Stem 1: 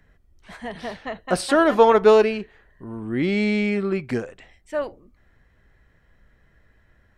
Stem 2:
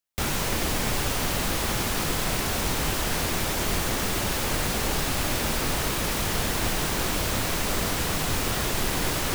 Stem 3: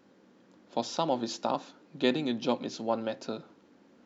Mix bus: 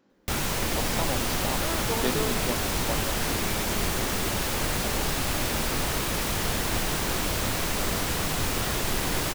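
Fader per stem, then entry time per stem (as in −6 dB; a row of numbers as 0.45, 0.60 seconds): −18.5, −1.0, −4.0 decibels; 0.10, 0.10, 0.00 seconds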